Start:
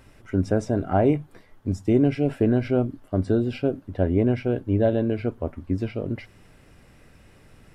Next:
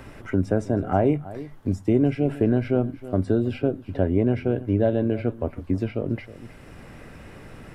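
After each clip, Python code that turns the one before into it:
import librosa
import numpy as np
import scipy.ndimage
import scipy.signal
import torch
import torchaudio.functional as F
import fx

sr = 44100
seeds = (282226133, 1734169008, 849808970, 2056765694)

y = fx.dynamic_eq(x, sr, hz=5100.0, q=0.95, threshold_db=-51.0, ratio=4.0, max_db=-5)
y = y + 10.0 ** (-19.0 / 20.0) * np.pad(y, (int(316 * sr / 1000.0), 0))[:len(y)]
y = fx.band_squash(y, sr, depth_pct=40)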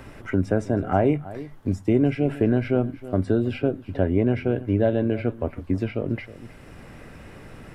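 y = fx.dynamic_eq(x, sr, hz=2100.0, q=0.95, threshold_db=-46.0, ratio=4.0, max_db=4)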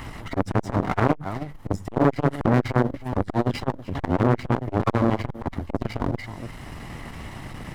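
y = fx.lower_of_two(x, sr, delay_ms=1.0)
y = fx.dynamic_eq(y, sr, hz=2600.0, q=3.5, threshold_db=-55.0, ratio=4.0, max_db=-6)
y = fx.transformer_sat(y, sr, knee_hz=920.0)
y = y * librosa.db_to_amplitude(8.5)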